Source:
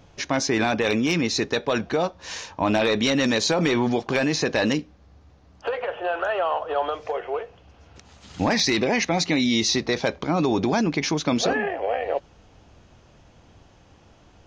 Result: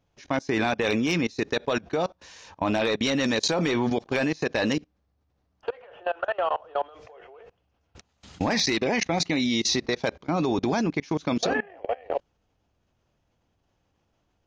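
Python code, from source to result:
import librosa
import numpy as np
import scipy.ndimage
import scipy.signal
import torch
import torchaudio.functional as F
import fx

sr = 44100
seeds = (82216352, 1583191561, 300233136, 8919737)

y = fx.level_steps(x, sr, step_db=24)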